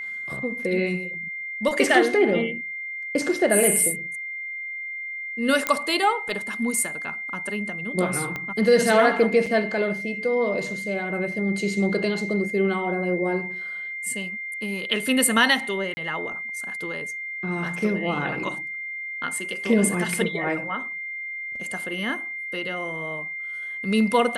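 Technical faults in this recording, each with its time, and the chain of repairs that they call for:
whine 2.1 kHz -30 dBFS
5.67 s: pop -7 dBFS
8.36 s: pop -16 dBFS
9.46–9.47 s: dropout 5.3 ms
15.94–15.97 s: dropout 30 ms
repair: de-click; band-stop 2.1 kHz, Q 30; interpolate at 9.46 s, 5.3 ms; interpolate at 15.94 s, 30 ms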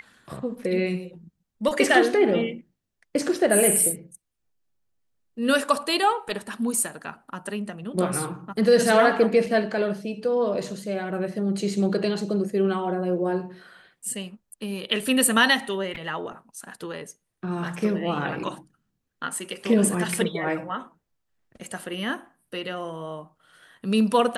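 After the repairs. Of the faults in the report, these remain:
8.36 s: pop

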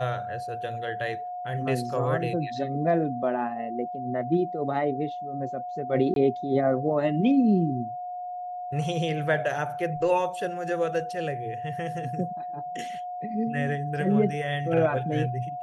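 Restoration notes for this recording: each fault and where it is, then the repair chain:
whine 720 Hz -32 dBFS
6.14–6.16 s: dropout 22 ms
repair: band-stop 720 Hz, Q 30; interpolate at 6.14 s, 22 ms

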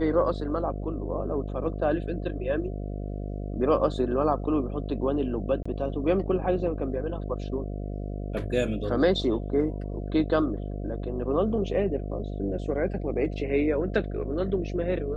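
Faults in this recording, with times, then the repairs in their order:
buzz 50 Hz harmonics 14 -33 dBFS
5.63–5.66 s: dropout 25 ms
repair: de-hum 50 Hz, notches 14; interpolate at 5.63 s, 25 ms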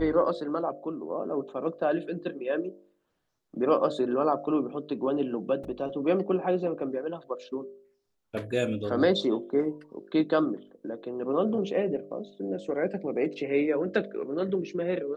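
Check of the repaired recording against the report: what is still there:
nothing left

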